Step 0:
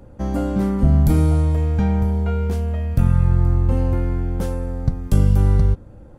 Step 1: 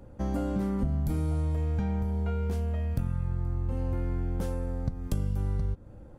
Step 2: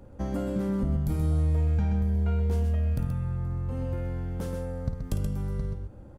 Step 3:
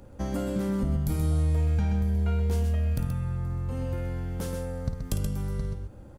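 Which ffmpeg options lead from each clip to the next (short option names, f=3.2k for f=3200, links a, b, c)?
-af "acompressor=threshold=-20dB:ratio=6,volume=-5.5dB"
-af "aecho=1:1:53|128:0.316|0.473"
-af "highshelf=f=2.2k:g=8"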